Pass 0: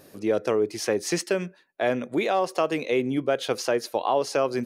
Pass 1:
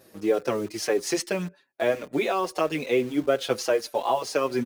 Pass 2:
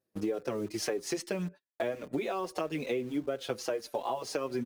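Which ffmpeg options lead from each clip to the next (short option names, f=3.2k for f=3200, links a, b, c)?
-filter_complex "[0:a]highpass=f=77:p=1,asplit=2[a][b];[b]acrusher=bits=5:mix=0:aa=0.000001,volume=-8dB[c];[a][c]amix=inputs=2:normalize=0,asplit=2[d][e];[e]adelay=5.6,afreqshift=-1.7[f];[d][f]amix=inputs=2:normalize=1"
-af "agate=range=-32dB:threshold=-42dB:ratio=16:detection=peak,lowshelf=f=460:g=6,acompressor=threshold=-31dB:ratio=5"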